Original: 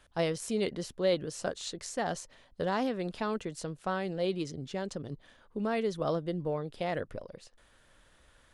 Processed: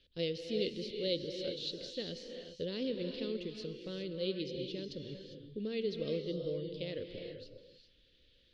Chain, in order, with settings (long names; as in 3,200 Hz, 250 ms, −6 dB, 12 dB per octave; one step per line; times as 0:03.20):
drawn EQ curve 150 Hz 0 dB, 510 Hz +4 dB, 760 Hz −26 dB, 1,400 Hz −16 dB, 2,900 Hz +7 dB, 4,400 Hz +10 dB, 8,100 Hz −22 dB
reverb whose tail is shaped and stops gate 430 ms rising, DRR 4.5 dB
level −7.5 dB